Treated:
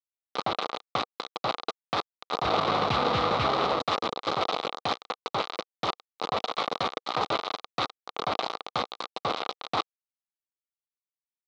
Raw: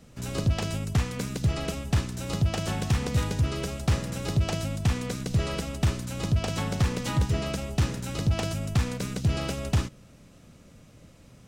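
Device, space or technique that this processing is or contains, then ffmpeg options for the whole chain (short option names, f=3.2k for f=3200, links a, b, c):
hand-held game console: -filter_complex "[0:a]asettb=1/sr,asplit=3[a][b][c];[a]atrim=end=2.454[d];[b]atrim=start=2.45:end=3.8,asetpts=PTS-STARTPTS,afade=t=in:d=0.004:c=qsin,afade=t=out:st=1.346:d=0.004:c=qsin,aemphasis=mode=reproduction:type=riaa[e];[c]atrim=start=3.796[f];[d][e]acrossfade=d=0.004:c1=hsin:c2=qsin[g];[g][f]acrossfade=d=0.004:c1=qsin:c2=hsin,aecho=1:1:869|1738:0.141|0.0283,acrusher=bits=3:mix=0:aa=0.000001,highpass=400,equalizer=f=480:t=q:w=4:g=4,equalizer=f=780:t=q:w=4:g=6,equalizer=f=1.2k:t=q:w=4:g=10,equalizer=f=1.7k:t=q:w=4:g=-9,equalizer=f=2.7k:t=q:w=4:g=-4,equalizer=f=3.9k:t=q:w=4:g=7,lowpass=f=4.1k:w=0.5412,lowpass=f=4.1k:w=1.3066"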